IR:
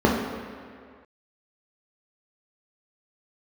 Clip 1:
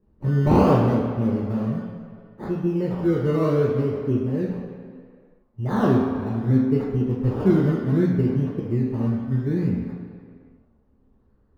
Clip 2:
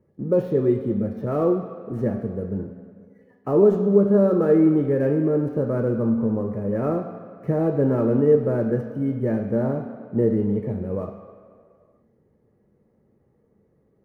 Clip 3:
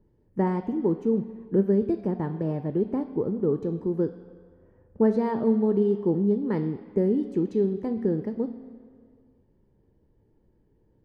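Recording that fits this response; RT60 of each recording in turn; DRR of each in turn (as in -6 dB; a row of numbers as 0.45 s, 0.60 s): 1; 2.0 s, 2.0 s, 2.0 s; -3.0 dB, 4.5 dB, 10.0 dB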